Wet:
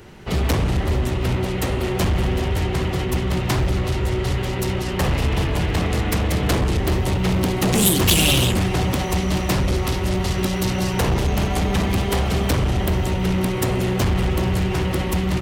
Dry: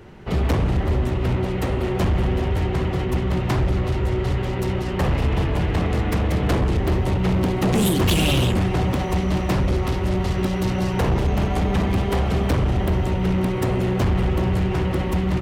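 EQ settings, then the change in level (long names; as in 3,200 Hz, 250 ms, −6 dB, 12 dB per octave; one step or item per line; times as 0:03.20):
high-shelf EQ 3,200 Hz +11.5 dB
0.0 dB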